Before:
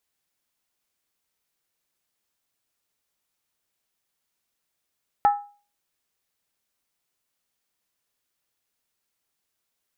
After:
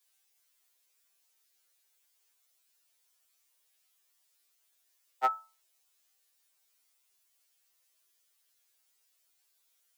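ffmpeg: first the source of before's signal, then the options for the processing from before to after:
-f lavfi -i "aevalsrc='0.266*pow(10,-3*t/0.38)*sin(2*PI*819*t)+0.075*pow(10,-3*t/0.301)*sin(2*PI*1305.5*t)+0.0211*pow(10,-3*t/0.26)*sin(2*PI*1749.4*t)+0.00596*pow(10,-3*t/0.251)*sin(2*PI*1880.4*t)+0.00168*pow(10,-3*t/0.233)*sin(2*PI*2172.8*t)':d=0.63:s=44100"
-af "highpass=f=350:w=0.5412,highpass=f=350:w=1.3066,highshelf=f=2k:g=9.5,afftfilt=real='re*2.45*eq(mod(b,6),0)':imag='im*2.45*eq(mod(b,6),0)':win_size=2048:overlap=0.75"

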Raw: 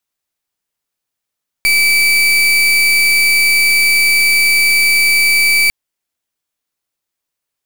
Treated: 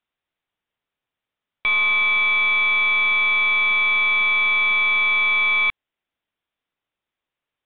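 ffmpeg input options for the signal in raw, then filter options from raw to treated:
-f lavfi -i "aevalsrc='0.282*(2*lt(mod(2310*t,1),0.36)-1)':d=4.05:s=44100"
-af "aresample=8000,volume=17.5dB,asoftclip=hard,volume=-17.5dB,aresample=44100"

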